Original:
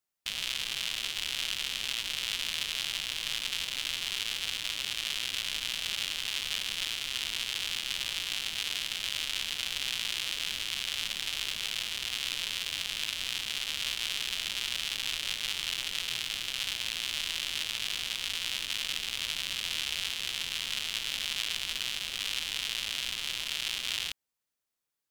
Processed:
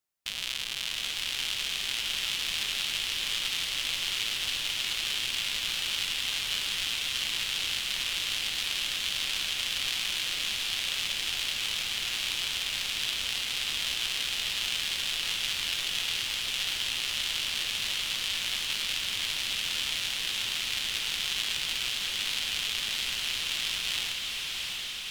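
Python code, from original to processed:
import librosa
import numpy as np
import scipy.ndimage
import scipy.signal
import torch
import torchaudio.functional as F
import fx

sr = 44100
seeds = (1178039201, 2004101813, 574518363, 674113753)

y = fx.echo_diffused(x, sr, ms=712, feedback_pct=70, wet_db=-3.0)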